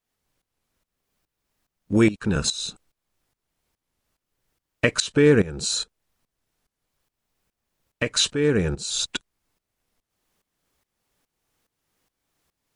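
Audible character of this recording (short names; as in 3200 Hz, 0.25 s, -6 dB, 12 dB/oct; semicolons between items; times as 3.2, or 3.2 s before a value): tremolo saw up 2.4 Hz, depth 85%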